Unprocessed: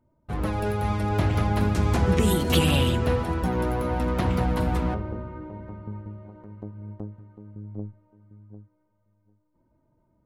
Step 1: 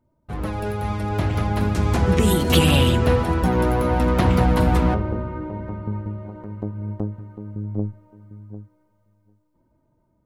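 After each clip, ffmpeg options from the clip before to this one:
-af "dynaudnorm=f=510:g=9:m=3.35"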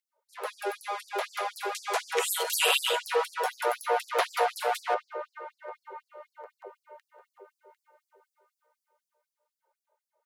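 -af "afreqshift=-19,afftfilt=real='re*gte(b*sr/1024,350*pow(4600/350,0.5+0.5*sin(2*PI*4*pts/sr)))':imag='im*gte(b*sr/1024,350*pow(4600/350,0.5+0.5*sin(2*PI*4*pts/sr)))':win_size=1024:overlap=0.75"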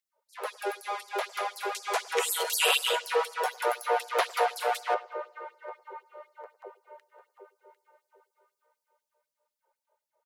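-filter_complex "[0:a]asplit=2[s0][s1];[s1]adelay=104,lowpass=f=2700:p=1,volume=0.0841,asplit=2[s2][s3];[s3]adelay=104,lowpass=f=2700:p=1,volume=0.54,asplit=2[s4][s5];[s5]adelay=104,lowpass=f=2700:p=1,volume=0.54,asplit=2[s6][s7];[s7]adelay=104,lowpass=f=2700:p=1,volume=0.54[s8];[s0][s2][s4][s6][s8]amix=inputs=5:normalize=0"

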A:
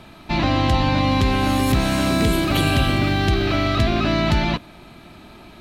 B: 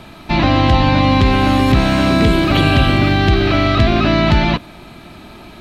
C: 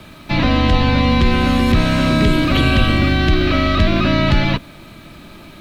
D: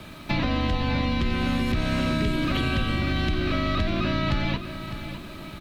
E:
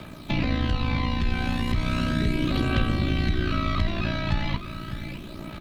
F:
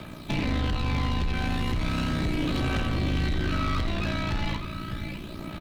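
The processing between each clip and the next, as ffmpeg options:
-filter_complex "[0:a]acrossover=split=4900[s0][s1];[s1]acompressor=threshold=0.00398:ratio=4:attack=1:release=60[s2];[s0][s2]amix=inputs=2:normalize=0,volume=2"
-af "equalizer=f=820:t=o:w=0.49:g=-6.5,acrusher=bits=8:mix=0:aa=0.000001,afreqshift=-26,volume=0.891"
-af "acompressor=threshold=0.1:ratio=4,aecho=1:1:606|1212|1818|2424:0.282|0.121|0.0521|0.0224,volume=0.75"
-af "aphaser=in_gain=1:out_gain=1:delay=1.3:decay=0.42:speed=0.36:type=triangular,tremolo=f=59:d=0.571"
-filter_complex "[0:a]volume=15,asoftclip=hard,volume=0.0668,asplit=2[s0][s1];[s1]aecho=0:1:83:0.299[s2];[s0][s2]amix=inputs=2:normalize=0"

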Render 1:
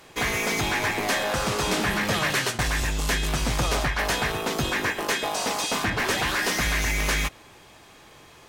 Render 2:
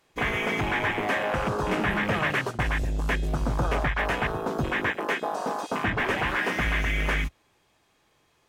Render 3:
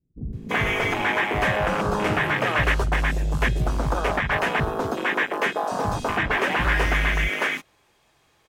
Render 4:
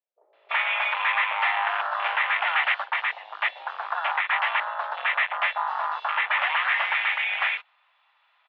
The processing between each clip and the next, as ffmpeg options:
-af "afwtdn=0.0447"
-filter_complex "[0:a]acrossover=split=240[s0][s1];[s1]adelay=330[s2];[s0][s2]amix=inputs=2:normalize=0,volume=1.58"
-af "highpass=f=600:t=q:w=0.5412,highpass=f=600:t=q:w=1.307,lowpass=f=3400:t=q:w=0.5176,lowpass=f=3400:t=q:w=0.7071,lowpass=f=3400:t=q:w=1.932,afreqshift=180"

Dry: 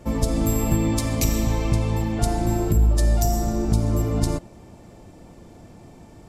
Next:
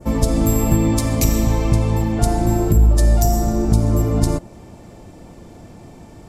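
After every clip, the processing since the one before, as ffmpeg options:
-af "adynamicequalizer=threshold=0.00562:dfrequency=3200:dqfactor=0.72:tfrequency=3200:tqfactor=0.72:attack=5:release=100:ratio=0.375:range=2:mode=cutabove:tftype=bell,volume=1.78"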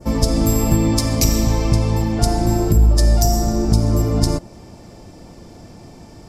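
-af "equalizer=f=5100:w=3:g=10"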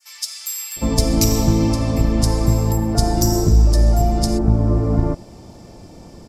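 -filter_complex "[0:a]acrossover=split=1900[s0][s1];[s0]adelay=760[s2];[s2][s1]amix=inputs=2:normalize=0"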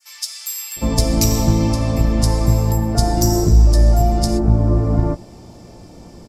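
-filter_complex "[0:a]asplit=2[s0][s1];[s1]adelay=17,volume=0.282[s2];[s0][s2]amix=inputs=2:normalize=0"

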